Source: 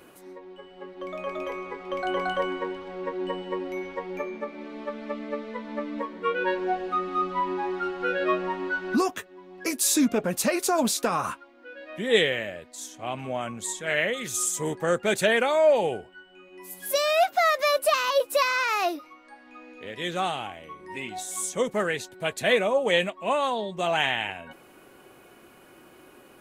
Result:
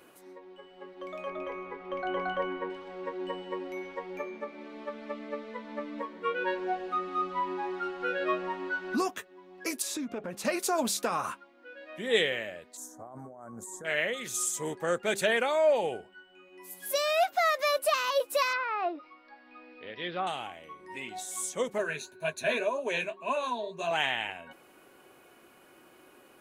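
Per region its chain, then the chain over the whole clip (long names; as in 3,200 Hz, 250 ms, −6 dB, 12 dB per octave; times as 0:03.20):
0:01.29–0:02.70: bass and treble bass +5 dB, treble −13 dB + notch filter 7,900 Hz, Q 5.7
0:09.82–0:10.45: low-pass filter 2,500 Hz 6 dB per octave + downward compressor 5 to 1, threshold −26 dBFS
0:12.77–0:13.85: parametric band 4,000 Hz −14 dB 1.3 octaves + compressor whose output falls as the input rises −39 dBFS + Butterworth band-reject 2,700 Hz, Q 0.8
0:18.53–0:20.27: treble cut that deepens with the level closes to 1,600 Hz, closed at −23 dBFS + bad sample-rate conversion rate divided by 4×, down none, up filtered
0:21.78–0:23.91: EQ curve with evenly spaced ripples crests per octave 1.5, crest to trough 14 dB + flanger 1.9 Hz, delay 5.8 ms, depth 9.8 ms, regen −41%
whole clip: low-shelf EQ 190 Hz −7.5 dB; hum removal 198.7 Hz, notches 2; level −4 dB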